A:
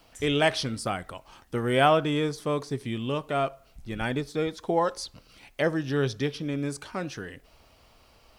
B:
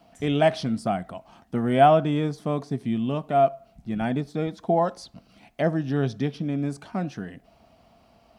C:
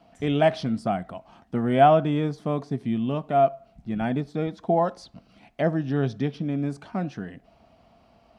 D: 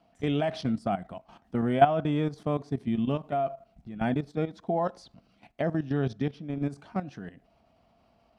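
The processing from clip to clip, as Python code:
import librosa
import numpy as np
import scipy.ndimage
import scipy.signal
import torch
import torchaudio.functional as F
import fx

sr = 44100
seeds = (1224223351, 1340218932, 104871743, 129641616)

y1 = scipy.signal.sosfilt(scipy.signal.butter(2, 41.0, 'highpass', fs=sr, output='sos'), x)
y1 = fx.high_shelf(y1, sr, hz=5300.0, db=-5.5)
y1 = fx.small_body(y1, sr, hz=(200.0, 680.0), ring_ms=30, db=14)
y1 = y1 * librosa.db_to_amplitude(-4.0)
y2 = fx.high_shelf(y1, sr, hz=7500.0, db=-12.0)
y3 = fx.level_steps(y2, sr, step_db=13)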